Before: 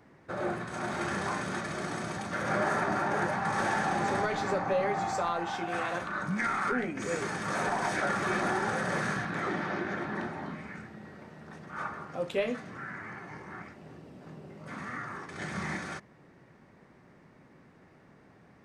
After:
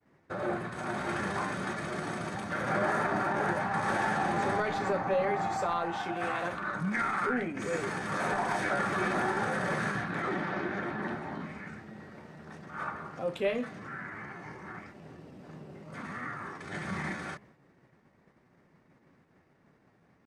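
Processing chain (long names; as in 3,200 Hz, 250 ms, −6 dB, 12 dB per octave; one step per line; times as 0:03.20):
downward expander −51 dBFS
tempo change 0.92×
dynamic equaliser 6,100 Hz, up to −5 dB, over −57 dBFS, Q 1.3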